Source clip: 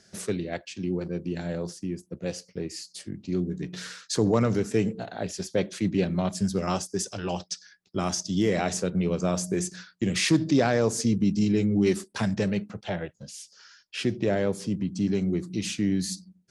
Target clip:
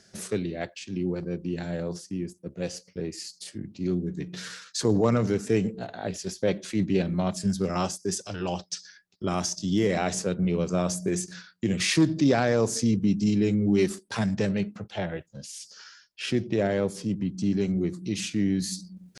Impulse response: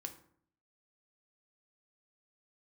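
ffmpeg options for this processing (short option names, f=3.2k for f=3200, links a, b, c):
-af "areverse,acompressor=mode=upward:threshold=-37dB:ratio=2.5,areverse,atempo=0.86"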